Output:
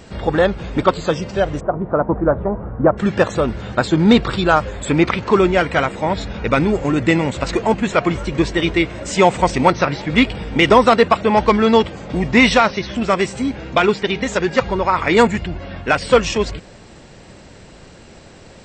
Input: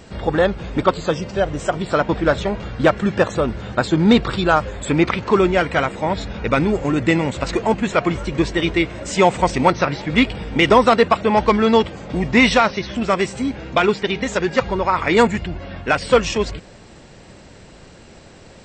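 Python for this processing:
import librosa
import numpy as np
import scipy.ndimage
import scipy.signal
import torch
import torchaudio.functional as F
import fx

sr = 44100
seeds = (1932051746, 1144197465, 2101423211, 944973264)

y = fx.lowpass(x, sr, hz=1200.0, slope=24, at=(1.59, 2.97), fade=0.02)
y = y * 10.0 ** (1.5 / 20.0)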